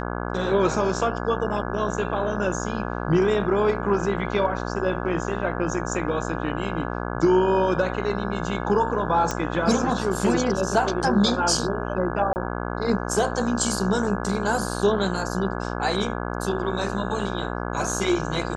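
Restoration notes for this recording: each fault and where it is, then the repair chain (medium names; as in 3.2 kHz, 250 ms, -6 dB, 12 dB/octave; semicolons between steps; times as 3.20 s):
buzz 60 Hz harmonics 28 -29 dBFS
9.31 s: pop -11 dBFS
12.33–12.36 s: dropout 29 ms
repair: de-click; de-hum 60 Hz, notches 28; interpolate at 12.33 s, 29 ms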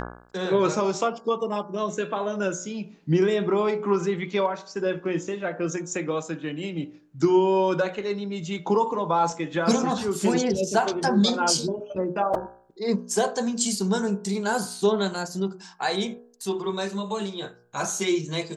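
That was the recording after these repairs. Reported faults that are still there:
nothing left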